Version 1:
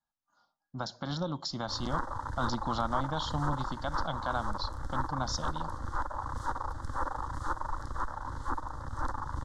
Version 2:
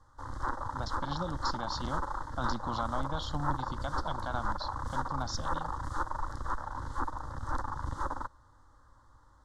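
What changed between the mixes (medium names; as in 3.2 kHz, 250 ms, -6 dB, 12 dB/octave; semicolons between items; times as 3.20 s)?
speech -3.0 dB; background: entry -1.50 s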